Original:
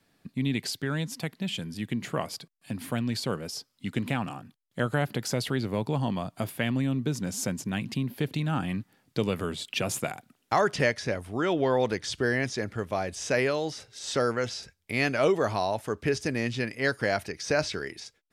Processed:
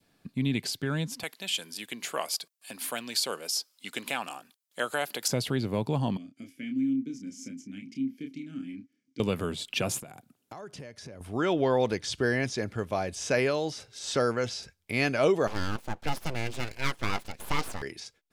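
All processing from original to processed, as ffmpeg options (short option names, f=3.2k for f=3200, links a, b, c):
-filter_complex "[0:a]asettb=1/sr,asplit=3[a][b][c];[a]atrim=end=1.234[d];[b]atrim=start=1.23:end=5.28,asetpts=PTS-STARTPTS,afade=t=in:d=0.004:c=qsin,afade=t=out:st=4.046:d=0.004:c=qsin,highpass=490,highshelf=f=3.6k:g=10.5[e];[c]atrim=start=5.276[f];[d][e]acrossfade=d=0.004:c1=hsin:c2=qsin[g];[g][f]acrossfade=d=0.004:c1=qsin:c2=hsin,asettb=1/sr,asplit=3[h][i][j];[h]atrim=end=6.174[k];[i]atrim=start=6.17:end=9.2,asetpts=PTS-STARTPTS,afade=t=in:d=0.004:c=qsin,afade=t=out:st=3.026:d=0.004:c=qsin,asplit=3[l][m][n];[l]bandpass=f=270:t=q:w=8,volume=0dB[o];[m]bandpass=f=2.29k:t=q:w=8,volume=-6dB[p];[n]bandpass=f=3.01k:t=q:w=8,volume=-9dB[q];[o][p][q]amix=inputs=3:normalize=0,highshelf=f=4.6k:t=q:w=3:g=8,asplit=2[r][s];[s]adelay=30,volume=-5.5dB[t];[r][t]amix=inputs=2:normalize=0,atrim=end_sample=133623[u];[j]atrim=start=9.196[v];[k][u]acrossfade=d=0.004:c1=hsin:c2=qsin[w];[w][v]acrossfade=d=0.004:c1=qsin:c2=hsin,asettb=1/sr,asplit=3[x][y][z];[x]atrim=end=10.004[aa];[y]atrim=start=10:end=11.21,asetpts=PTS-STARTPTS,afade=t=in:d=0.004:c=qsin,afade=t=out:st=1.206:d=0.004:c=qsin,highpass=57,equalizer=f=2.1k:w=0.34:g=-7.5,acompressor=threshold=-41dB:ratio=5:attack=3.2:release=140:knee=1:detection=peak[ab];[z]atrim=start=11.206[ac];[aa][ab]acrossfade=d=0.004:c1=hsin:c2=qsin[ad];[ad][ac]acrossfade=d=0.004:c1=qsin:c2=hsin,asettb=1/sr,asplit=3[ae][af][ag];[ae]atrim=end=15.474[ah];[af]atrim=start=15.47:end=17.82,asetpts=PTS-STARTPTS,afade=t=in:d=0.004:c=qsin,afade=t=out:st=2.346:d=0.004:c=qsin,highpass=f=130:p=1,highshelf=f=5.2k:g=-5.5,aeval=exprs='abs(val(0))':c=same[ai];[ag]atrim=start=17.816[aj];[ah][ai]acrossfade=d=0.004:c1=hsin:c2=qsin[ak];[ak][aj]acrossfade=d=0.004:c1=qsin:c2=hsin,bandreject=f=1.9k:w=16,adynamicequalizer=threshold=0.00631:dfrequency=1400:dqfactor=1.7:tfrequency=1400:tqfactor=1.7:attack=5:release=100:ratio=0.375:range=2:mode=cutabove:tftype=bell"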